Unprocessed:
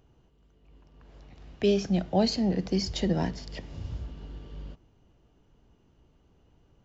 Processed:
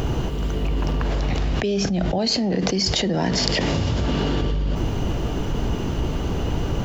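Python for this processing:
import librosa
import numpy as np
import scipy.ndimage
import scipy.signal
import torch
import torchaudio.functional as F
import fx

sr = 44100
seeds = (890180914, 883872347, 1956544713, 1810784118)

y = fx.highpass(x, sr, hz=230.0, slope=6, at=(2.18, 4.42))
y = fx.env_flatten(y, sr, amount_pct=100)
y = y * 10.0 ** (-1.0 / 20.0)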